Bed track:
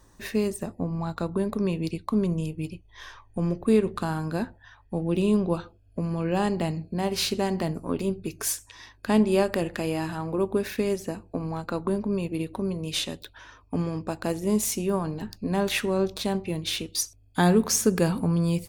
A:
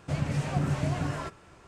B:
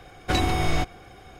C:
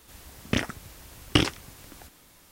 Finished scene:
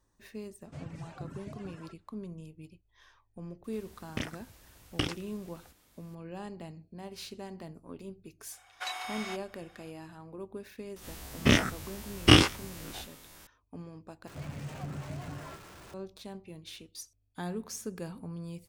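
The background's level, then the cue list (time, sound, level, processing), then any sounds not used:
bed track -17 dB
0.64 add A -14 dB + reverb removal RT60 1.9 s
3.64 add C -10 dB
8.52 add B -9 dB + HPF 780 Hz 24 dB/oct
10.96 add C -1.5 dB + spectral dilation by 60 ms
14.27 replace with A -13 dB + zero-crossing step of -33 dBFS

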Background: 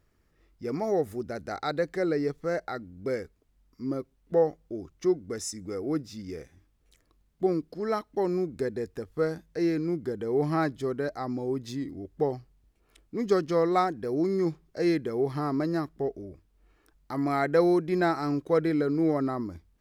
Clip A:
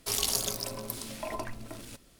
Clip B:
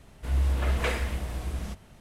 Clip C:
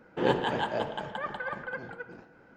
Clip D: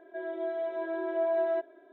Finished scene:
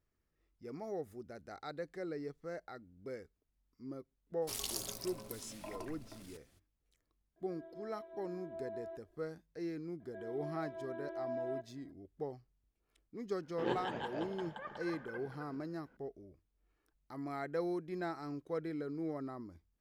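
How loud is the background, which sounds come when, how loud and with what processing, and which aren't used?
background -14.5 dB
4.41 add A -11 dB, fades 0.02 s
7.36 add D -16.5 dB + bell 2000 Hz -4.5 dB 2.2 oct
10 add D -12 dB
13.41 add C -11.5 dB
not used: B

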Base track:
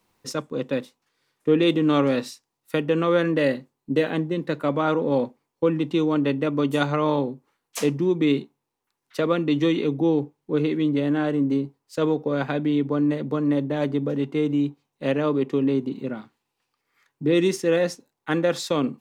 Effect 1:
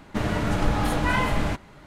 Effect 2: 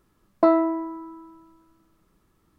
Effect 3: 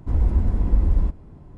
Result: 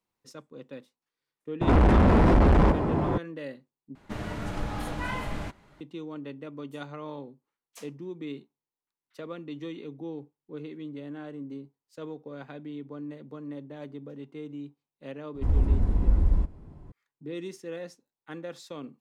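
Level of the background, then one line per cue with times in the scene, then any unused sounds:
base track -17 dB
1.61 add 3 -4.5 dB + overdrive pedal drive 44 dB, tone 1100 Hz, clips at -6.5 dBFS
3.95 replace with 1 -9.5 dB
15.35 add 3 -3.5 dB
not used: 2

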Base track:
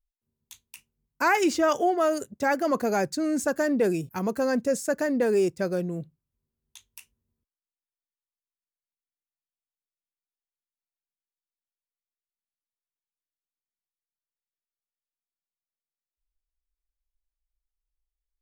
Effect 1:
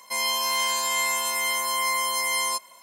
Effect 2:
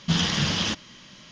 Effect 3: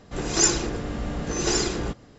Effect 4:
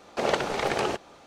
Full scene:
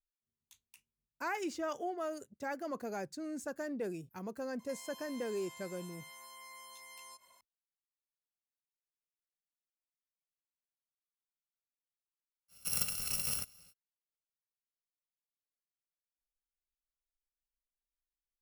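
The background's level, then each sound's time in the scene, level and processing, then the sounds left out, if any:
base track -15 dB
4.59 add 1 -14.5 dB + compressor, threshold -36 dBFS
12.48 add 4 -9 dB, fades 0.05 s + FFT order left unsorted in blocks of 128 samples
not used: 2, 3

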